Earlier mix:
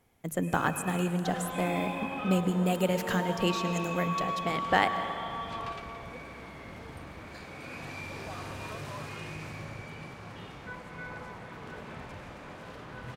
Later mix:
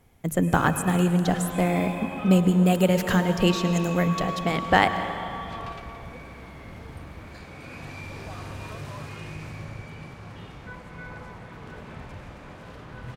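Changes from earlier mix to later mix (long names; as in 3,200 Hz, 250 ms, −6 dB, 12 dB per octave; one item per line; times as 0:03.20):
speech +5.5 dB
master: add low-shelf EQ 130 Hz +9.5 dB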